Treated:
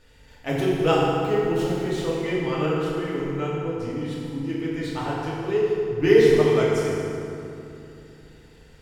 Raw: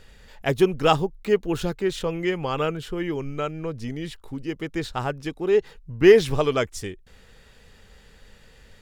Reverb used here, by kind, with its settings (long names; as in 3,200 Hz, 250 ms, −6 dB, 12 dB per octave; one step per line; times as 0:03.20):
feedback delay network reverb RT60 2.8 s, low-frequency decay 1.35×, high-frequency decay 0.6×, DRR −7.5 dB
level −8.5 dB